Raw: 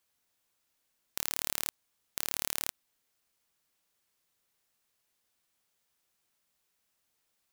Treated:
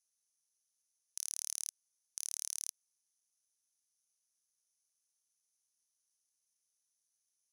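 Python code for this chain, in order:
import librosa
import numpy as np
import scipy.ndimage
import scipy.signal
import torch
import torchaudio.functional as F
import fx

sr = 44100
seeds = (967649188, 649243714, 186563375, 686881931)

y = fx.bandpass_q(x, sr, hz=8000.0, q=10.0)
y = y * np.sin(2.0 * np.pi * 1900.0 * np.arange(len(y)) / sr)
y = F.gain(torch.from_numpy(y), 11.0).numpy()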